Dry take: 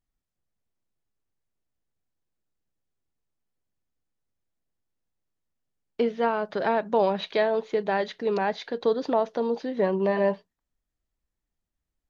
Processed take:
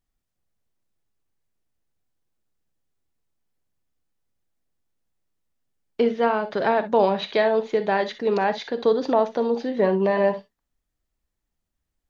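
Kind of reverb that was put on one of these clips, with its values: gated-style reverb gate 80 ms rising, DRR 10.5 dB; trim +3.5 dB

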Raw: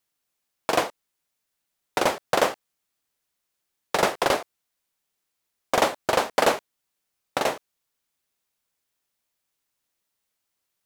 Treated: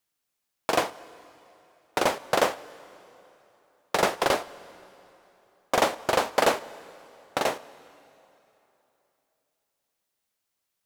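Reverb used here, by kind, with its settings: plate-style reverb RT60 3.2 s, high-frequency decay 0.85×, DRR 17.5 dB; trim -1.5 dB

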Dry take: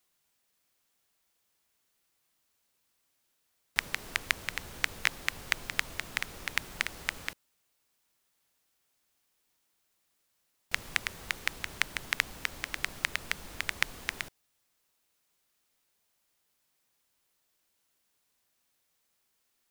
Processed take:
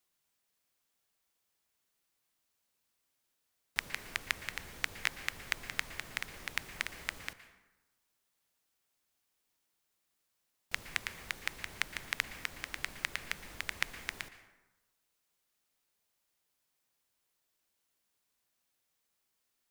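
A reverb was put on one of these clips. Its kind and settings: plate-style reverb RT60 1.1 s, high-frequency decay 0.55×, pre-delay 105 ms, DRR 12.5 dB; trim -5 dB

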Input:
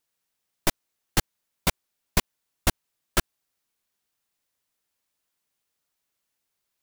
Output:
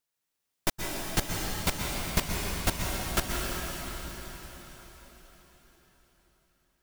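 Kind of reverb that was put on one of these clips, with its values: plate-style reverb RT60 4.9 s, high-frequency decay 0.95×, pre-delay 110 ms, DRR -2 dB; trim -5 dB

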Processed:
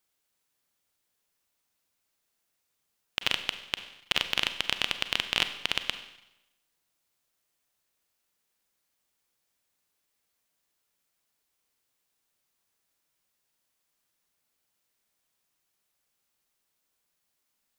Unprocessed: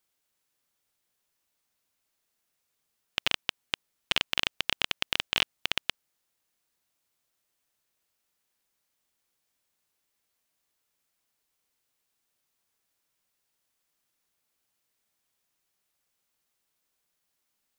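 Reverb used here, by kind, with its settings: Schroeder reverb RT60 0.89 s, combs from 32 ms, DRR 9.5 dB

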